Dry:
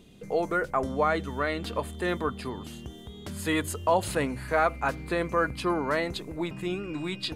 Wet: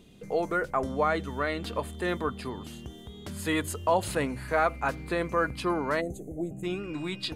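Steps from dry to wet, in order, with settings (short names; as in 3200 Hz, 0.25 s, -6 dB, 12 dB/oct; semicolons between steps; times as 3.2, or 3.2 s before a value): spectral gain 6.01–6.63, 800–6100 Hz -26 dB; gain -1 dB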